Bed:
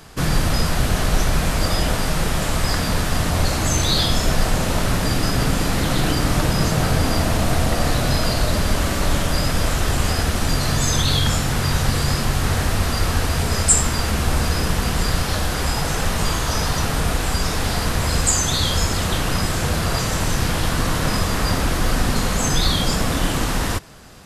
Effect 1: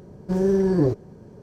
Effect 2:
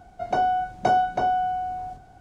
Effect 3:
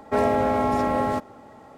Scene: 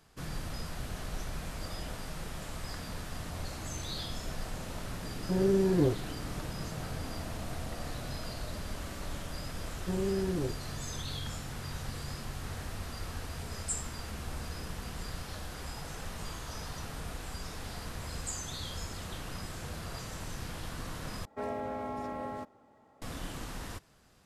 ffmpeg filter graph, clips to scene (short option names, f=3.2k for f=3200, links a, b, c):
-filter_complex "[1:a]asplit=2[a][b];[0:a]volume=-20dB[c];[b]alimiter=limit=-14.5dB:level=0:latency=1:release=71[d];[c]asplit=2[e][f];[e]atrim=end=21.254[g];[3:a]atrim=end=1.77,asetpts=PTS-STARTPTS,volume=-15.5dB[h];[f]atrim=start=23.016[i];[a]atrim=end=1.42,asetpts=PTS-STARTPTS,volume=-6.5dB,afade=t=in:d=0.004:c=hsin,afade=t=out:st=1.416:d=0.004:c=hsin,adelay=5000[j];[d]atrim=end=1.42,asetpts=PTS-STARTPTS,volume=-10.5dB,afade=t=in:d=0.004:c=hsin,afade=t=out:st=1.416:d=0.004:c=hsin,adelay=9580[k];[g][h]acrossfade=d=0.004:c1=hsin:c2=hsin[l];[l][i]acrossfade=d=0.004:c1=hsin:c2=hsin[m];[m][j][k]amix=inputs=3:normalize=0"